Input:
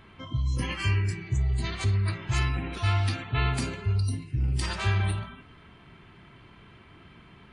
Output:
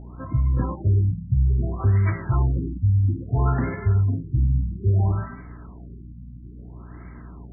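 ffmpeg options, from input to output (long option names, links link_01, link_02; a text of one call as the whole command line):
ffmpeg -i in.wav -af "aeval=exprs='val(0)+0.00501*(sin(2*PI*60*n/s)+sin(2*PI*2*60*n/s)/2+sin(2*PI*3*60*n/s)/3+sin(2*PI*4*60*n/s)/4+sin(2*PI*5*60*n/s)/5)':channel_layout=same,adynamicsmooth=sensitivity=8:basefreq=6300,aresample=16000,volume=18.5dB,asoftclip=hard,volume=-18.5dB,aresample=44100,afftfilt=real='re*lt(b*sr/1024,270*pow(2300/270,0.5+0.5*sin(2*PI*0.6*pts/sr)))':imag='im*lt(b*sr/1024,270*pow(2300/270,0.5+0.5*sin(2*PI*0.6*pts/sr)))':win_size=1024:overlap=0.75,volume=6.5dB" out.wav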